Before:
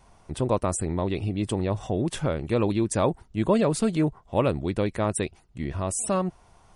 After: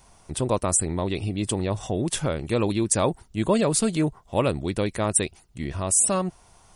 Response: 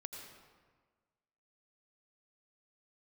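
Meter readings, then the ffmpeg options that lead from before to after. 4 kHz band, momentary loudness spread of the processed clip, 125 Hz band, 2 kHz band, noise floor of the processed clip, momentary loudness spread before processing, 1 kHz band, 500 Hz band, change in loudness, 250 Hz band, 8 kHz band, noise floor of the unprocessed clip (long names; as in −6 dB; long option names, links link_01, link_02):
+5.5 dB, 9 LU, 0.0 dB, +2.5 dB, −56 dBFS, 7 LU, +0.5 dB, 0.0 dB, +2.0 dB, 0.0 dB, +10.0 dB, −57 dBFS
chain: -af "highshelf=frequency=4100:gain=12"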